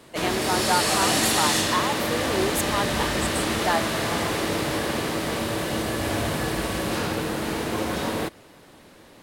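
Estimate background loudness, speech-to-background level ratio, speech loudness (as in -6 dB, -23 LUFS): -24.5 LUFS, -4.0 dB, -28.5 LUFS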